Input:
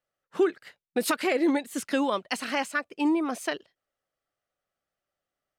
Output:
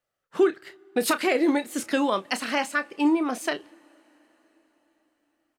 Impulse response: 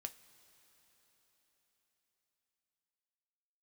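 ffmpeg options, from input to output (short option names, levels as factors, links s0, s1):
-filter_complex "[0:a]asplit=2[s0][s1];[s1]adelay=31,volume=0.237[s2];[s0][s2]amix=inputs=2:normalize=0,asplit=2[s3][s4];[1:a]atrim=start_sample=2205[s5];[s4][s5]afir=irnorm=-1:irlink=0,volume=0.562[s6];[s3][s6]amix=inputs=2:normalize=0"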